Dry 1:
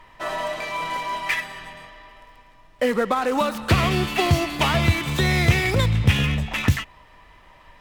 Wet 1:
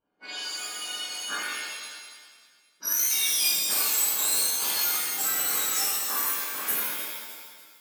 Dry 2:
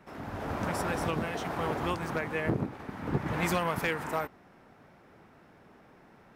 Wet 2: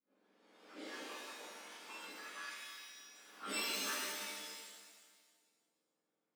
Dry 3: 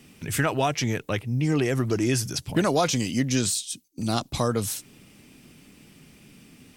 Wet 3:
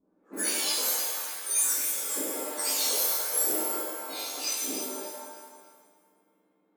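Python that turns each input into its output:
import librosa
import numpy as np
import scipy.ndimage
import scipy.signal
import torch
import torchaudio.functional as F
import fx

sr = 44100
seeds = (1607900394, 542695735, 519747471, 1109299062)

p1 = fx.octave_mirror(x, sr, pivot_hz=1700.0)
p2 = fx.dereverb_blind(p1, sr, rt60_s=1.2)
p3 = fx.env_lowpass(p2, sr, base_hz=380.0, full_db=-24.0)
p4 = fx.peak_eq(p3, sr, hz=160.0, db=-10.5, octaves=0.35)
p5 = fx.notch(p4, sr, hz=1900.0, q=14.0)
p6 = fx.rider(p5, sr, range_db=3, speed_s=2.0)
p7 = librosa.effects.preemphasis(p6, coef=0.9, zi=[0.0])
p8 = fx.doubler(p7, sr, ms=19.0, db=-5)
p9 = p8 + fx.echo_feedback(p8, sr, ms=300, feedback_pct=34, wet_db=-11.0, dry=0)
p10 = fx.rev_shimmer(p9, sr, seeds[0], rt60_s=1.2, semitones=7, shimmer_db=-2, drr_db=-7.5)
y = p10 * 10.0 ** (-3.5 / 20.0)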